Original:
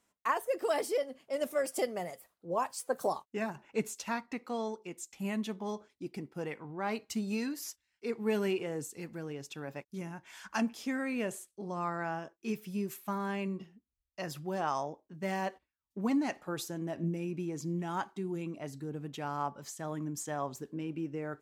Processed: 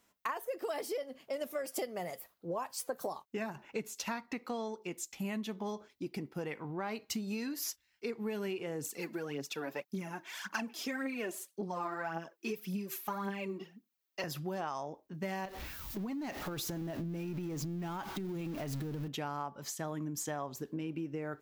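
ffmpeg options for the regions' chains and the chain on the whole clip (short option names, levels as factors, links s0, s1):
-filter_complex "[0:a]asettb=1/sr,asplit=3[s0][s1][s2];[s0]atrim=end=8.844[s3];[s1]atrim=start=8.84:end=14.24,asetpts=PTS-STARTPTS,afade=t=in:d=0.004:c=qsin,afade=t=out:st=5.396:d=0.004:c=qsin,aphaser=in_gain=1:out_gain=1:delay=3.3:decay=0.6:speed=1.8:type=triangular,highpass=f=170:w=0.5412,highpass=f=170:w=1.3066[s4];[s2]atrim=start=14.236[s5];[s3][s4]acrossfade=d=0.004:c1=hsin:c2=qsin[s6];[s6][s5]acrossfade=d=0.004:c1=qsin:c2=hsin,asettb=1/sr,asplit=3[s7][s8][s9];[s7]atrim=end=15.454[s10];[s8]atrim=start=15.45:end=19.08,asetpts=PTS-STARTPTS,afade=t=in:d=0.004:c=qsin,afade=t=out:st=3.626:d=0.004:c=qsin,aeval=exprs='val(0)+0.5*0.00668*sgn(val(0))':c=same,acompressor=threshold=0.0112:ratio=10:attack=3.2:release=140:knee=1:detection=peak,lowshelf=f=140:g=9[s11];[s9]atrim=start=19.076[s12];[s10][s11]acrossfade=d=0.004:c1=hsin:c2=qsin[s13];[s13][s12]acrossfade=d=0.004:c1=qsin:c2=hsin,equalizer=f=8700:t=o:w=1:g=-9.5,acompressor=threshold=0.0112:ratio=6,highshelf=f=4300:g=8,volume=1.58"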